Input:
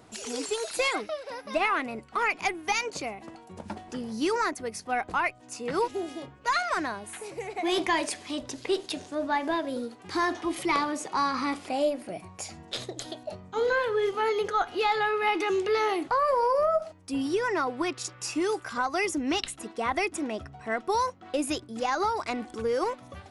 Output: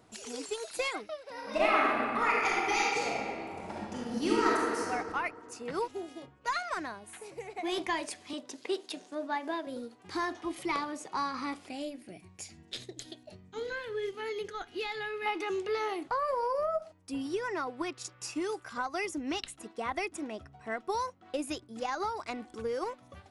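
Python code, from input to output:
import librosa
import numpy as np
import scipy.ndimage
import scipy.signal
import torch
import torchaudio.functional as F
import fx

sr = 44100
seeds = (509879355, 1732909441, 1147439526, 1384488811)

y = fx.reverb_throw(x, sr, start_s=1.31, length_s=3.5, rt60_s=2.3, drr_db=-6.5)
y = fx.highpass(y, sr, hz=190.0, slope=24, at=(8.33, 9.67))
y = fx.band_shelf(y, sr, hz=830.0, db=-9.0, octaves=1.7, at=(11.68, 15.26))
y = fx.transient(y, sr, attack_db=2, sustain_db=-2)
y = y * librosa.db_to_amplitude(-7.0)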